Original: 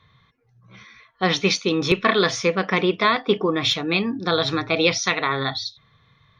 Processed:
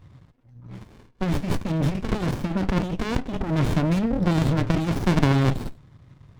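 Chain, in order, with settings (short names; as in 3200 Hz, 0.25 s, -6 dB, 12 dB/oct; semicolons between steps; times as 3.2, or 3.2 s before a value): low shelf 310 Hz +9 dB; negative-ratio compressor -21 dBFS, ratio -1; running maximum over 65 samples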